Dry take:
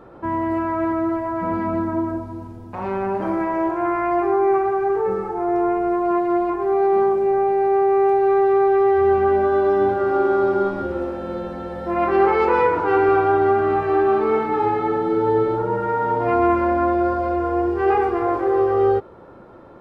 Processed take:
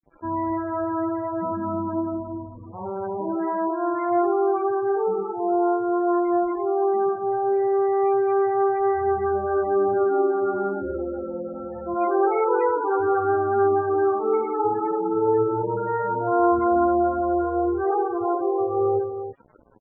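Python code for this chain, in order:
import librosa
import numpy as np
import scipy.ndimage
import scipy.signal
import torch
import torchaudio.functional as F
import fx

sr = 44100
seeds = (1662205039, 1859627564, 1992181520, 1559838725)

y = fx.echo_multitap(x, sr, ms=(43, 50, 106, 325), db=(-10.5, -19.0, -11.0, -10.0))
y = fx.quant_dither(y, sr, seeds[0], bits=6, dither='none')
y = fx.spec_topn(y, sr, count=16)
y = y * 10.0 ** (-4.5 / 20.0)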